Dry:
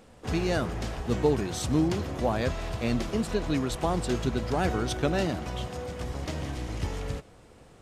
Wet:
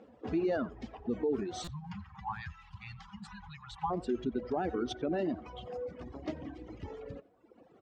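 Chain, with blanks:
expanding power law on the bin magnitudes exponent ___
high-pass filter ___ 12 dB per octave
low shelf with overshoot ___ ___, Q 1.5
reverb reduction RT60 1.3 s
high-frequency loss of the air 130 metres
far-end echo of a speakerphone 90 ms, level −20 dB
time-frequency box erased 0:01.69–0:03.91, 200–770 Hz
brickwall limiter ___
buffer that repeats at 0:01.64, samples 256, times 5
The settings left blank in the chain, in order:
1.5, 71 Hz, 190 Hz, −9.5 dB, −23.5 dBFS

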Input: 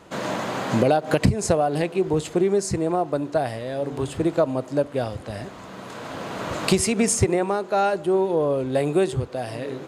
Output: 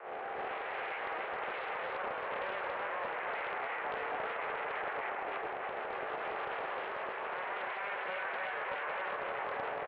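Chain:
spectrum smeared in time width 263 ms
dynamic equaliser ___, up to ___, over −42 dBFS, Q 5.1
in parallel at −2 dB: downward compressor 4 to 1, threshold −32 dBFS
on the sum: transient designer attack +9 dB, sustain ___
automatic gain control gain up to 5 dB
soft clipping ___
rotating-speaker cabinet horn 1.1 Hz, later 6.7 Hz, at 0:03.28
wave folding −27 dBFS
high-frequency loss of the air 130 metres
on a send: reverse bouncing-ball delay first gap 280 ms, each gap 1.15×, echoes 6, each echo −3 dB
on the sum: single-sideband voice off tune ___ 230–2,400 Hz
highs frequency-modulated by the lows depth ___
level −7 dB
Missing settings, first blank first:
600 Hz, +6 dB, −10 dB, −15.5 dBFS, +180 Hz, 0.23 ms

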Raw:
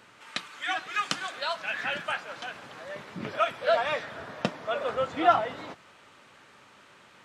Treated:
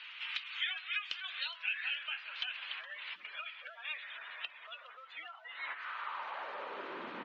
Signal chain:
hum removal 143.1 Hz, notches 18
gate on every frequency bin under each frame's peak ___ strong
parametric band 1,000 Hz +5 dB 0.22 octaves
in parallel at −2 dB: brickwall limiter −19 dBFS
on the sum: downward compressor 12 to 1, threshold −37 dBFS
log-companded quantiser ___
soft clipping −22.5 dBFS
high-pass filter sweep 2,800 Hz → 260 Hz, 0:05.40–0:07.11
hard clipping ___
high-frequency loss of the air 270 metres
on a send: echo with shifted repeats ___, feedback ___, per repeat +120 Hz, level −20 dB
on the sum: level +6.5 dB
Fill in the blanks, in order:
−20 dB, 8 bits, −25.5 dBFS, 416 ms, 58%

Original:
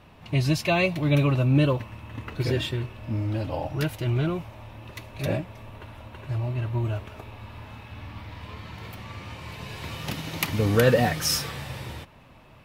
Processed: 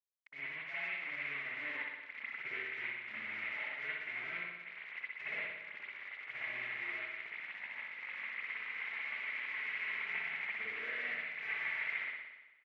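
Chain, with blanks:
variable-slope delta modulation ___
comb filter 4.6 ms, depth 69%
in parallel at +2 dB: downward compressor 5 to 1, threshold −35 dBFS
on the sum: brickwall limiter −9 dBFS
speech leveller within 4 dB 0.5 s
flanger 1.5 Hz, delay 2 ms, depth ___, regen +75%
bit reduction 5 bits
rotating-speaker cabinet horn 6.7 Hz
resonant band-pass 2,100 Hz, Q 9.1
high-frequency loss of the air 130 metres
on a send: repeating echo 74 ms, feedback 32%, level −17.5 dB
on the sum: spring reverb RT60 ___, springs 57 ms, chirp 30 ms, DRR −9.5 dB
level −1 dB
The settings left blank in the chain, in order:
16 kbit/s, 1.8 ms, 1.1 s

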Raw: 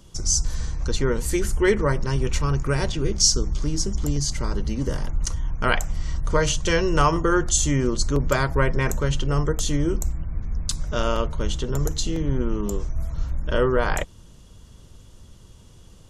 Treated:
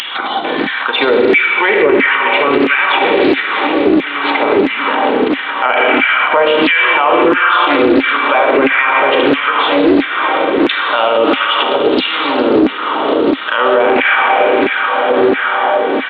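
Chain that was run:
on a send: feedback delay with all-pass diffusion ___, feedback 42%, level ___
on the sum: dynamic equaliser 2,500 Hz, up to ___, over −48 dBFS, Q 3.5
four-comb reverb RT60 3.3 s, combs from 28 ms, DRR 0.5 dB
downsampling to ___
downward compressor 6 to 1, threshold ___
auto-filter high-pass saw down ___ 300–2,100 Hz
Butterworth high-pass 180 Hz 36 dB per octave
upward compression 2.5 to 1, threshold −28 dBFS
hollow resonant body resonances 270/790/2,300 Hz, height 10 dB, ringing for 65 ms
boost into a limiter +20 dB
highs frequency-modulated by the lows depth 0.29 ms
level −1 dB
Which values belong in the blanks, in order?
1,581 ms, −12.5 dB, +7 dB, 8,000 Hz, −21 dBFS, 1.5 Hz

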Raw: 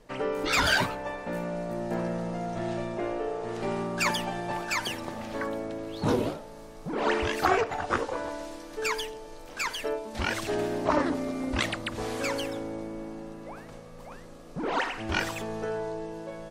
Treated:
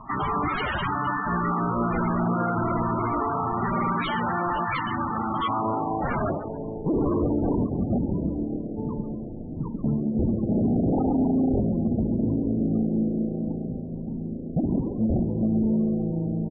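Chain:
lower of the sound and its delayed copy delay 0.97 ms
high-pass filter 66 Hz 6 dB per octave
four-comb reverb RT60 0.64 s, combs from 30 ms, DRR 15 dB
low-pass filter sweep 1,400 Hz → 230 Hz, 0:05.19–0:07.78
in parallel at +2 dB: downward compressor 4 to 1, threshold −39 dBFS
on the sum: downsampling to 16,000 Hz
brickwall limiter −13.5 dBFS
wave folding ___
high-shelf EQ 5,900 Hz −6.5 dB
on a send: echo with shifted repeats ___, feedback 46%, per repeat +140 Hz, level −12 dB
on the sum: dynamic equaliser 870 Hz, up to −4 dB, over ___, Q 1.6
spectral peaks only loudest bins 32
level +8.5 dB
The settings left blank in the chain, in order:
−25.5 dBFS, 137 ms, −45 dBFS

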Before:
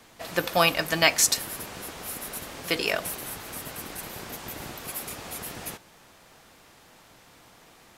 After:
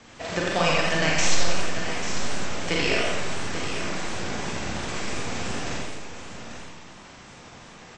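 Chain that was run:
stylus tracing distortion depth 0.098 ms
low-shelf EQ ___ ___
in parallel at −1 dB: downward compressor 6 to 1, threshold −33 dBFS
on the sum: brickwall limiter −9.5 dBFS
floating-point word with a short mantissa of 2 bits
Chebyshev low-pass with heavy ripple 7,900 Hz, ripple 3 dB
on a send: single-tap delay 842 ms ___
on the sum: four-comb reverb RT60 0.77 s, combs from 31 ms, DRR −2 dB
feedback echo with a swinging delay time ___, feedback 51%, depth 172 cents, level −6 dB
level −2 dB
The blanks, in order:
400 Hz, +5.5 dB, −10 dB, 86 ms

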